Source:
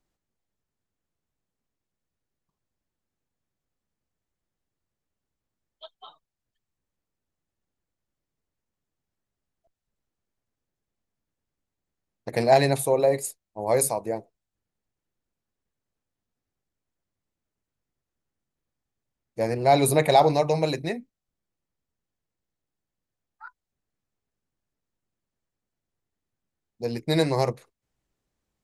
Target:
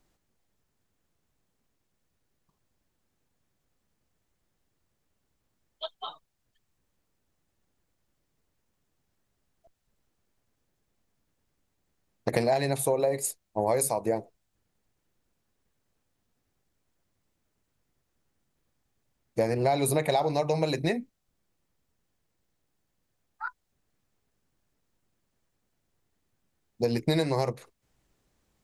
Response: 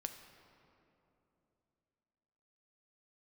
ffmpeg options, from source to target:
-af "acompressor=threshold=0.0282:ratio=8,volume=2.66"

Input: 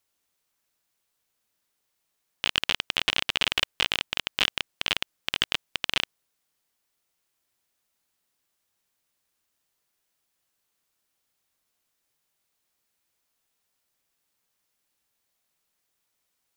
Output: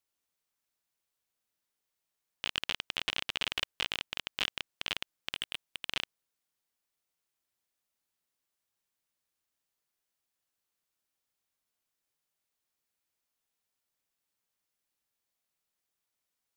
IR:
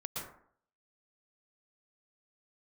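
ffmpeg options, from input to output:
-filter_complex "[0:a]asettb=1/sr,asplit=3[s0][s1][s2];[s0]atrim=end=5.354[s3];[s1]atrim=start=5.35:end=5.89,asetpts=PTS-STARTPTS,afade=t=in:d=0.004:c=qsin,afade=t=out:st=0.536:d=0.004:c=qsin,asoftclip=type=hard:threshold=0.224[s4];[s2]atrim=start=5.886[s5];[s3][s4]acrossfade=d=0.004:c1=hsin:c2=qsin[s6];[s6][s5]acrossfade=d=0.004:c1=qsin:c2=hsin,volume=0.376"

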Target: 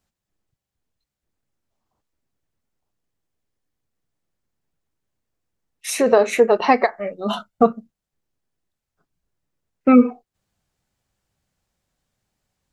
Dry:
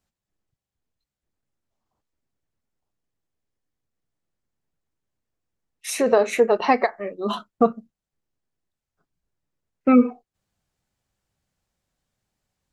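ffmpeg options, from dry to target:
-filter_complex "[0:a]asettb=1/sr,asplit=3[s0][s1][s2];[s0]atrim=end=6.994[s3];[s1]atrim=start=6.99:end=7.63,asetpts=PTS-STARTPTS,afade=t=in:d=0.004:c=qsin,afade=t=out:st=0.636:d=0.004:c=qsin,aecho=1:1:1.4:0.55,atrim=end_sample=28224[s4];[s2]atrim=start=7.626[s5];[s3][s4]acrossfade=d=0.004:c1=hsin:c2=qsin[s6];[s6][s5]acrossfade=d=0.004:c1=qsin:c2=hsin,volume=1.41"

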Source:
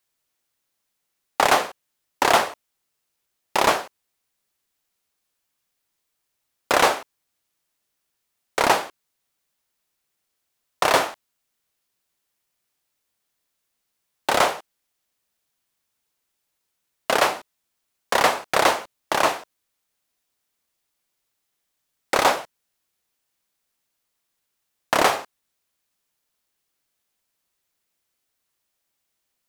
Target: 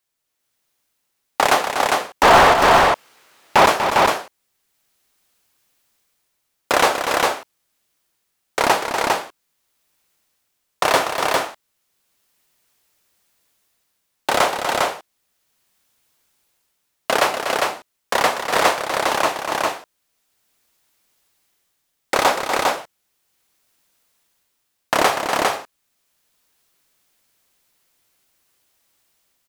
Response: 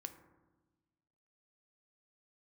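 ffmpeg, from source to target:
-filter_complex "[0:a]asettb=1/sr,asplit=3[s0][s1][s2];[s0]atrim=end=2.234[s3];[s1]atrim=start=2.23:end=3.66,asetpts=PTS-STARTPTS,afade=t=in:d=0.004:c=qsin,afade=t=out:st=1.426:d=0.004:c=qsin,asplit=2[s4][s5];[s5]highpass=f=720:p=1,volume=70.8,asoftclip=type=tanh:threshold=0.708[s6];[s4][s6]amix=inputs=2:normalize=0,lowpass=f=1300:p=1,volume=0.501[s7];[s2]atrim=start=3.656[s8];[s3][s7]acrossfade=d=0.004:c1=hsin:c2=qsin[s9];[s9][s8]acrossfade=d=0.004:c1=qsin:c2=hsin,aecho=1:1:243|403:0.398|0.708,dynaudnorm=f=140:g=9:m=3.16,volume=0.891"

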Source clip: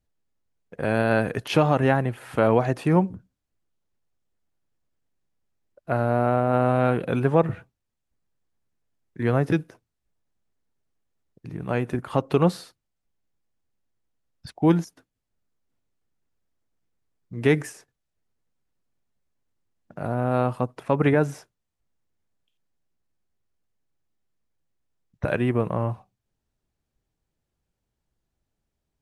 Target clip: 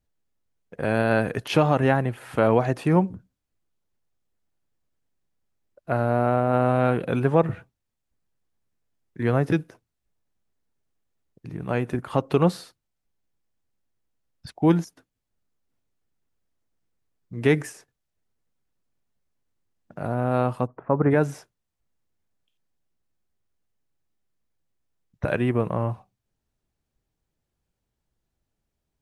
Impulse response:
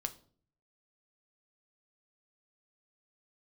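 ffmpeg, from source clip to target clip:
-filter_complex "[0:a]asplit=3[s0][s1][s2];[s0]afade=t=out:st=20.66:d=0.02[s3];[s1]lowpass=f=1500:w=0.5412,lowpass=f=1500:w=1.3066,afade=t=in:st=20.66:d=0.02,afade=t=out:st=21.1:d=0.02[s4];[s2]afade=t=in:st=21.1:d=0.02[s5];[s3][s4][s5]amix=inputs=3:normalize=0"

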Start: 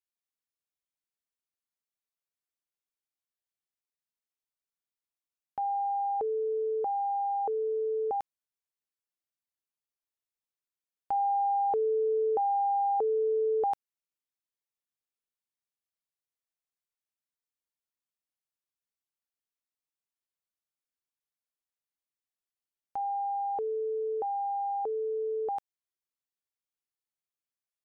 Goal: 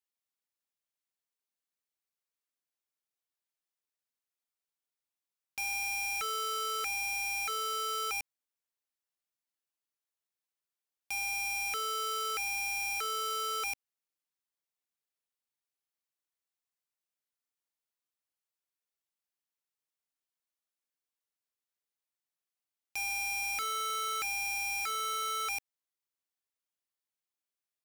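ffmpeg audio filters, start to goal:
-af "lowshelf=f=180:g=-10,alimiter=level_in=1.88:limit=0.0631:level=0:latency=1,volume=0.531,aeval=exprs='(mod(37.6*val(0)+1,2)-1)/37.6':c=same"

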